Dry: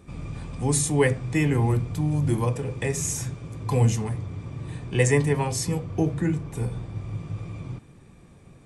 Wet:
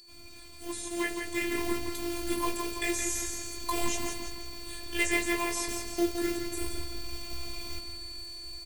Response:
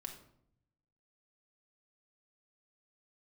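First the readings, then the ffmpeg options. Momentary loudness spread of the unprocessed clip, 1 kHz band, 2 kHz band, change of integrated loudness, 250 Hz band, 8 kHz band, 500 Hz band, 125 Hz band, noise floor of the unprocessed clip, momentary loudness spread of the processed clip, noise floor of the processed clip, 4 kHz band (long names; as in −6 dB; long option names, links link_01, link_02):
14 LU, −3.0 dB, −0.5 dB, −7.0 dB, −6.5 dB, −3.5 dB, −8.0 dB, −24.5 dB, −51 dBFS, 11 LU, −47 dBFS, +4.0 dB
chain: -filter_complex "[0:a]asubboost=boost=5.5:cutoff=58,acrossover=split=150|1200[link_01][link_02][link_03];[link_02]acrusher=bits=3:mode=log:mix=0:aa=0.000001[link_04];[link_01][link_04][link_03]amix=inputs=3:normalize=0,flanger=delay=15:depth=3.1:speed=2.5,aeval=exprs='val(0)+0.00562*sin(2*PI*4600*n/s)':channel_layout=same,crystalizer=i=6:c=0,asplit=2[link_05][link_06];[link_06]adelay=167,lowpass=frequency=4400:poles=1,volume=-6.5dB,asplit=2[link_07][link_08];[link_08]adelay=167,lowpass=frequency=4400:poles=1,volume=0.52,asplit=2[link_09][link_10];[link_10]adelay=167,lowpass=frequency=4400:poles=1,volume=0.52,asplit=2[link_11][link_12];[link_12]adelay=167,lowpass=frequency=4400:poles=1,volume=0.52,asplit=2[link_13][link_14];[link_14]adelay=167,lowpass=frequency=4400:poles=1,volume=0.52,asplit=2[link_15][link_16];[link_16]adelay=167,lowpass=frequency=4400:poles=1,volume=0.52[link_17];[link_07][link_09][link_11][link_13][link_15][link_17]amix=inputs=6:normalize=0[link_18];[link_05][link_18]amix=inputs=2:normalize=0,acrossover=split=3500[link_19][link_20];[link_20]acompressor=threshold=-33dB:ratio=4:attack=1:release=60[link_21];[link_19][link_21]amix=inputs=2:normalize=0,afftfilt=real='hypot(re,im)*cos(PI*b)':imag='0':win_size=512:overlap=0.75,dynaudnorm=framelen=540:gausssize=5:maxgain=14dB,volume=-8dB"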